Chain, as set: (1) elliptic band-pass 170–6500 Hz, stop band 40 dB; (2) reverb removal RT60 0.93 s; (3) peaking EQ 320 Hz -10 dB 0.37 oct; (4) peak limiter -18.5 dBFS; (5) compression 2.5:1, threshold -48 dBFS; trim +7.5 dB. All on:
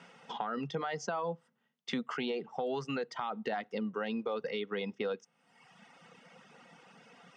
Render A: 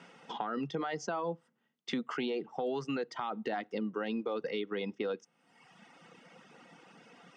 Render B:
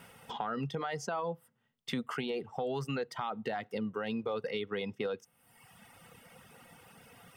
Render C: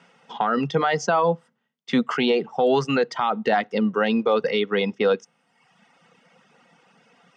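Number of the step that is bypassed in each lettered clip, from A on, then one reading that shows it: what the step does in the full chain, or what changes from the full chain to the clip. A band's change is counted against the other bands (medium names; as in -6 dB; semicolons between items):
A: 3, 250 Hz band +2.0 dB; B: 1, 125 Hz band +4.5 dB; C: 5, mean gain reduction 13.0 dB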